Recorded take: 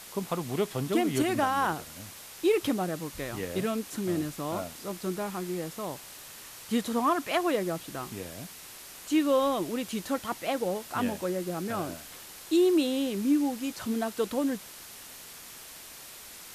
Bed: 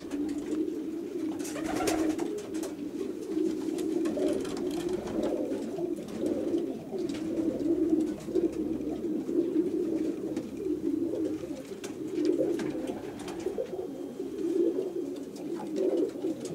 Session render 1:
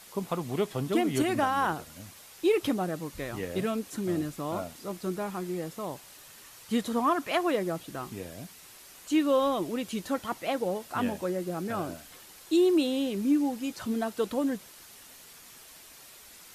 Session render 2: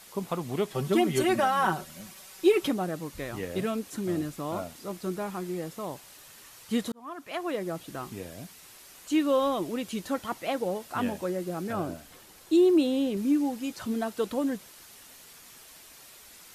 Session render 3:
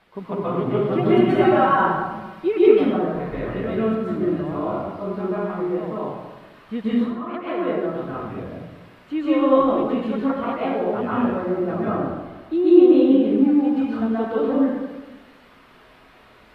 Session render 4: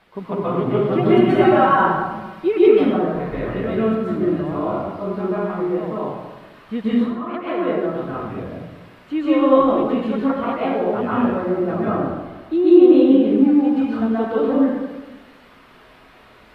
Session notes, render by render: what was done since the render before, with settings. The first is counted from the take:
denoiser 6 dB, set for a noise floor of -47 dBFS
0.74–2.68 comb 5.3 ms, depth 85%; 6.92–7.89 fade in; 11.73–13.17 tilt shelf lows +3 dB
air absorption 450 m; plate-style reverb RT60 1.2 s, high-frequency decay 0.65×, pre-delay 0.115 s, DRR -9 dB
gain +2.5 dB; limiter -2 dBFS, peak gain reduction 3 dB

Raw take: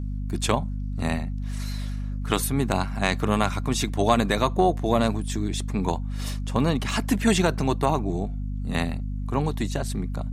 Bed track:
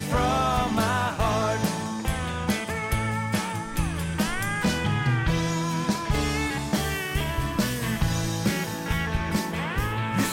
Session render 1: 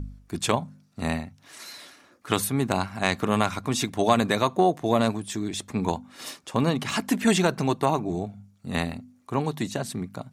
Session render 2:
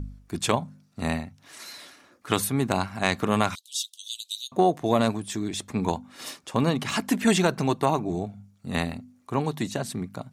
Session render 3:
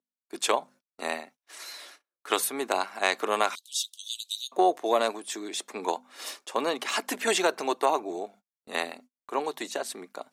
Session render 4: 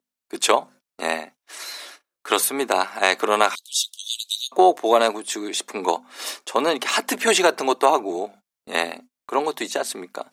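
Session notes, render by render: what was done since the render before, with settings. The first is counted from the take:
de-hum 50 Hz, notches 5
3.55–4.52 steep high-pass 3000 Hz 96 dB/oct
HPF 370 Hz 24 dB/oct; gate -50 dBFS, range -38 dB
gain +7.5 dB; limiter -1 dBFS, peak gain reduction 2.5 dB

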